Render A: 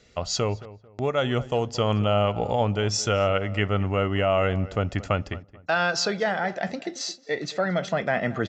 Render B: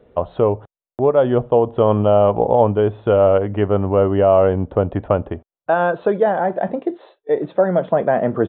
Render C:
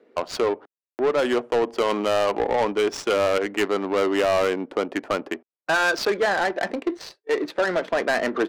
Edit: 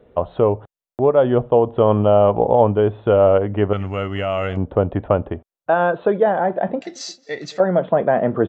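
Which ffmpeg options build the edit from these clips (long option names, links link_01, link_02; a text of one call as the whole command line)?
ffmpeg -i take0.wav -i take1.wav -filter_complex "[0:a]asplit=2[link_01][link_02];[1:a]asplit=3[link_03][link_04][link_05];[link_03]atrim=end=3.732[link_06];[link_01]atrim=start=3.728:end=4.572[link_07];[link_04]atrim=start=4.568:end=6.812[link_08];[link_02]atrim=start=6.808:end=7.602[link_09];[link_05]atrim=start=7.598[link_10];[link_06][link_07]acrossfade=duration=0.004:curve1=hsin:curve2=hsin[link_11];[link_11][link_08]acrossfade=duration=0.004:curve1=hsin:curve2=hsin[link_12];[link_12][link_09]acrossfade=duration=0.004:curve1=hsin:curve2=hsin[link_13];[link_13][link_10]acrossfade=duration=0.004:curve1=hsin:curve2=hsin" out.wav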